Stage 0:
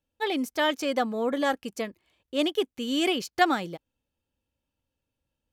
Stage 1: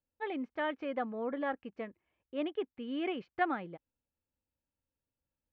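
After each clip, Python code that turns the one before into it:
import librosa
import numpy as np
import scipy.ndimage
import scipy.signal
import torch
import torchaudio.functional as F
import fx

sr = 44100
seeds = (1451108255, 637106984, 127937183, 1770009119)

y = scipy.signal.sosfilt(scipy.signal.butter(4, 2400.0, 'lowpass', fs=sr, output='sos'), x)
y = y * librosa.db_to_amplitude(-9.0)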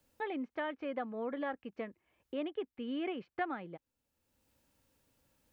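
y = fx.band_squash(x, sr, depth_pct=70)
y = y * librosa.db_to_amplitude(-2.5)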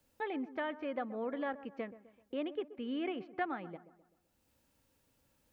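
y = fx.echo_wet_lowpass(x, sr, ms=128, feedback_pct=45, hz=1400.0, wet_db=-15.0)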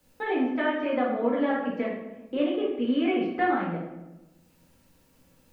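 y = fx.room_shoebox(x, sr, seeds[0], volume_m3=250.0, walls='mixed', distance_m=2.0)
y = y * librosa.db_to_amplitude(5.0)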